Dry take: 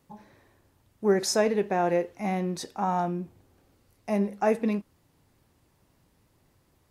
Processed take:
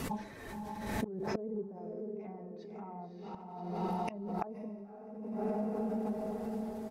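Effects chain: coarse spectral quantiser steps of 15 dB; low-pass that closes with the level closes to 1.4 kHz, closed at -24 dBFS; 1.27–1.69 s: fifteen-band graphic EQ 160 Hz +11 dB, 400 Hz +8 dB, 2.5 kHz +10 dB, 6.3 kHz +10 dB; low-pass that closes with the level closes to 440 Hz, closed at -20.5 dBFS; comb 4.5 ms, depth 38%; on a send: echo that smears into a reverb 567 ms, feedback 43%, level -3.5 dB; on the sum: inverted gate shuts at -25 dBFS, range -28 dB; compression 6:1, threshold -40 dBFS, peak gain reduction 9 dB; 3.18–4.33 s: peaking EQ 2.9 kHz +11 dB 0.28 oct; swell ahead of each attack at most 42 dB/s; trim +8 dB

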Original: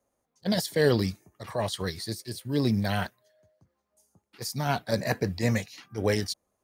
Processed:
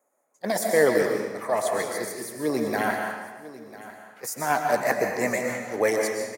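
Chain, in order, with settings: high-pass 380 Hz 12 dB/octave; high-order bell 3.7 kHz -12.5 dB 1.2 oct; delay 1038 ms -17 dB; reverberation RT60 1.3 s, pre-delay 95 ms, DRR 2 dB; speed mistake 24 fps film run at 25 fps; trim +5.5 dB

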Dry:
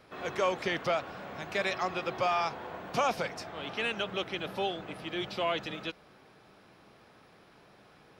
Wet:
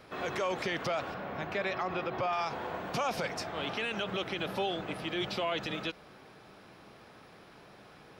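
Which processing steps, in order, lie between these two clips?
1.14–2.33 s: peaking EQ 9 kHz -14.5 dB 1.8 oct; peak limiter -28 dBFS, peak gain reduction 10 dB; trim +4 dB

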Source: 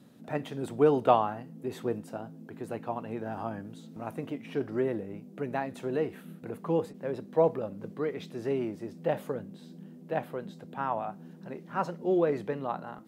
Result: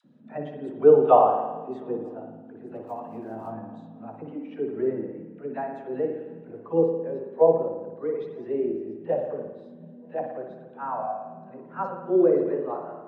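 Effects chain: low-pass 6.9 kHz; bass shelf 150 Hz -8 dB; in parallel at -0.5 dB: upward compressor, threshold -34 dBFS; 2.75–3.52 s: on the sum: short-mantissa float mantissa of 2-bit; phase dispersion lows, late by 49 ms, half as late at 690 Hz; on a send: shuffle delay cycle 949 ms, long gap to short 3:1, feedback 69%, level -24 dB; on the sum: spring tank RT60 1.7 s, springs 54 ms, chirp 65 ms, DRR 1 dB; spectral contrast expander 1.5:1

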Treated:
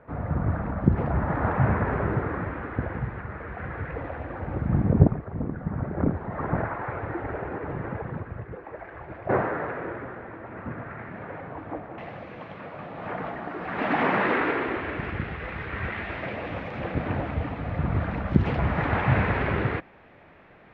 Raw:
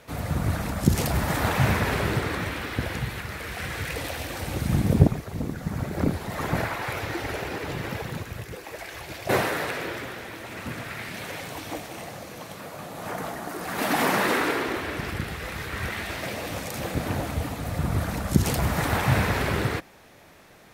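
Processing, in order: low-pass 1.6 kHz 24 dB/octave, from 11.98 s 2.6 kHz

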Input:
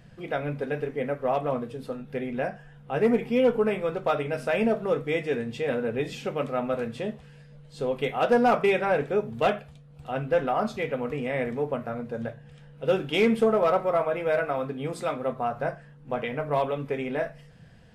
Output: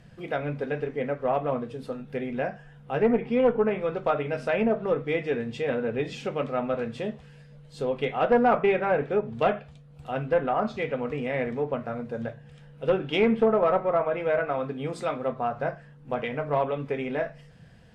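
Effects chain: Chebyshev shaper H 2 -14 dB, 4 -26 dB, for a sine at -13 dBFS; low-pass that closes with the level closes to 2.2 kHz, closed at -20 dBFS

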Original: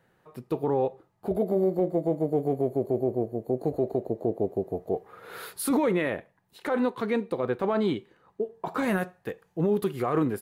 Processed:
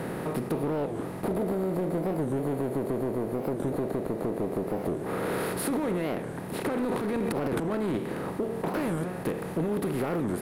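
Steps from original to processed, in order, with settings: spectral levelling over time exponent 0.4; compression, threshold -25 dBFS, peak gain reduction 9.5 dB; saturation -19.5 dBFS, distortion -19 dB; bass shelf 380 Hz +7 dB; waveshaping leveller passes 1; 6.84–7.97 s: transient shaper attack -9 dB, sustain +11 dB; warped record 45 rpm, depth 250 cents; trim -5.5 dB

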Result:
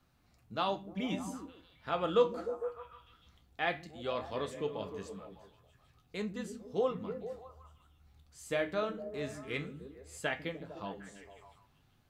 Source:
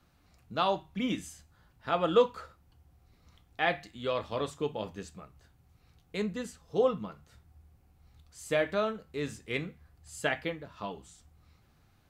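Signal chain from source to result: flange 0.17 Hz, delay 7.5 ms, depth 9.1 ms, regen +66%; repeats whose band climbs or falls 151 ms, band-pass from 210 Hz, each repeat 0.7 oct, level -5 dB

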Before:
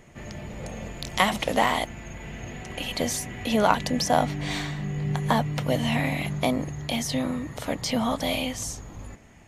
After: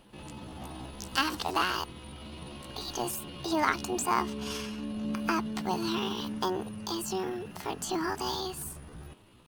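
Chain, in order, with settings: pitch shift +6.5 st; trim -6 dB

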